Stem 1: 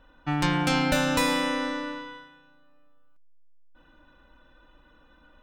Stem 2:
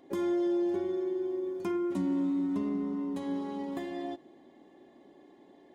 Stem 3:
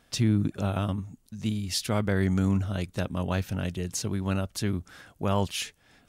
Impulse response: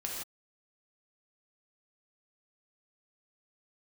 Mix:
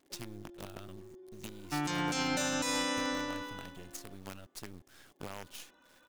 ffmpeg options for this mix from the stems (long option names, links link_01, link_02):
-filter_complex "[0:a]highpass=180,equalizer=frequency=6600:width=1.4:gain=12.5,adelay=1450,volume=-5dB[link_01];[1:a]alimiter=level_in=9dB:limit=-24dB:level=0:latency=1,volume=-9dB,volume=-15dB[link_02];[2:a]highshelf=frequency=2400:gain=5.5,acompressor=threshold=-37dB:ratio=4,acrusher=bits=6:dc=4:mix=0:aa=0.000001,volume=-7dB[link_03];[link_01][link_02][link_03]amix=inputs=3:normalize=0,alimiter=limit=-22.5dB:level=0:latency=1:release=166"